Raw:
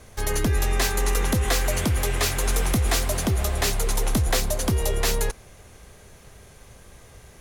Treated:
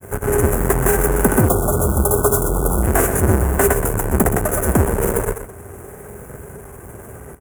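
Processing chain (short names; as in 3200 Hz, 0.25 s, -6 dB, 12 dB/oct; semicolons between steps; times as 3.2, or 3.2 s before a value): half-waves squared off; grains; in parallel at 0 dB: compressor, threshold -32 dBFS, peak gain reduction 16 dB; on the sum: HPF 69 Hz 12 dB/oct; bell 7500 Hz +9 dB 0.76 oct; small resonant body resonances 400/1500 Hz, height 8 dB; on a send: echo 0.123 s -10 dB; on the sum: spectral delete 1.48–2.83, 1500–3200 Hz; EQ curve 890 Hz 0 dB, 1800 Hz -3 dB, 2700 Hz -13 dB, 4200 Hz -30 dB, 11000 Hz +6 dB; gain +3 dB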